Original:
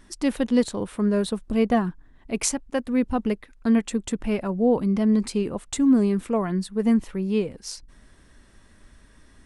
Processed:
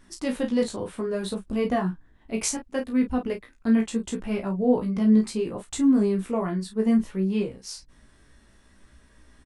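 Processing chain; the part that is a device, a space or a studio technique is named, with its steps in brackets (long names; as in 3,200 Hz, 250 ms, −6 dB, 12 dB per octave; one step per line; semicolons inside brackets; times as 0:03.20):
double-tracked vocal (double-tracking delay 32 ms −7 dB; chorus effect 0.67 Hz, delay 15 ms, depth 3.1 ms)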